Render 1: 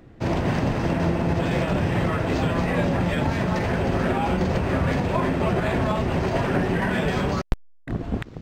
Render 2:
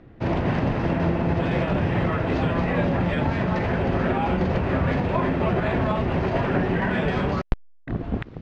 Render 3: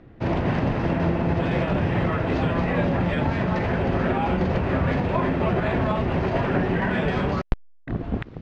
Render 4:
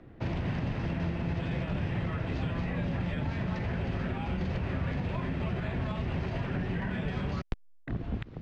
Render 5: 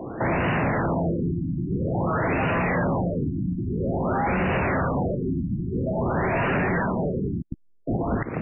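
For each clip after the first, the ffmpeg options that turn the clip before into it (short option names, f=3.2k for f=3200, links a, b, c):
-af "lowpass=3.4k"
-af anull
-filter_complex "[0:a]acrossover=split=190|1900[a][b][c];[a]acompressor=threshold=-26dB:ratio=4[d];[b]acompressor=threshold=-37dB:ratio=4[e];[c]acompressor=threshold=-42dB:ratio=4[f];[d][e][f]amix=inputs=3:normalize=0,volume=-3.5dB"
-filter_complex "[0:a]asplit=2[a][b];[b]highpass=f=720:p=1,volume=31dB,asoftclip=type=tanh:threshold=-18dB[c];[a][c]amix=inputs=2:normalize=0,lowpass=f=2.1k:p=1,volume=-6dB,afftfilt=real='re*lt(b*sr/1024,330*pow(3000/330,0.5+0.5*sin(2*PI*0.5*pts/sr)))':imag='im*lt(b*sr/1024,330*pow(3000/330,0.5+0.5*sin(2*PI*0.5*pts/sr)))':win_size=1024:overlap=0.75,volume=3dB"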